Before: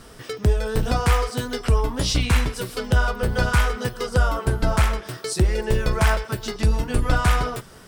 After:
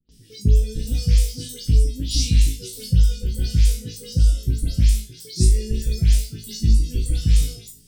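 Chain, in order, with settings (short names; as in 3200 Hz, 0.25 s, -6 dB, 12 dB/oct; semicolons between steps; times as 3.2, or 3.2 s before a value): spectral delay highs late, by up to 0.115 s; Chebyshev band-stop 220–4500 Hz, order 2; flutter echo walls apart 3.2 m, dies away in 0.34 s; gate with hold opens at -37 dBFS; spectral noise reduction 7 dB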